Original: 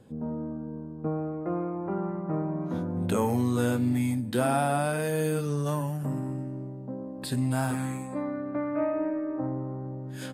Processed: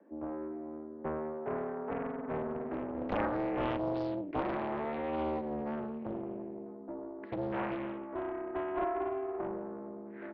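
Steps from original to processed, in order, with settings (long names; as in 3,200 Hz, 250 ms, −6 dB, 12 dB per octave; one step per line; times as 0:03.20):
0:04.26–0:06.66: flat-topped bell 990 Hz −8.5 dB 1.3 octaves
single-sideband voice off tune +76 Hz 150–2,000 Hz
highs frequency-modulated by the lows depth 0.96 ms
level −5 dB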